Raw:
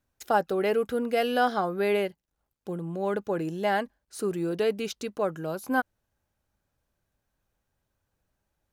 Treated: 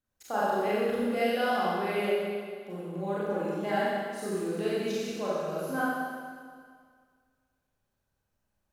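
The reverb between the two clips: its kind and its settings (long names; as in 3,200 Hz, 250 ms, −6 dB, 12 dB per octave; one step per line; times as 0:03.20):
four-comb reverb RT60 1.9 s, combs from 30 ms, DRR −9 dB
level −11 dB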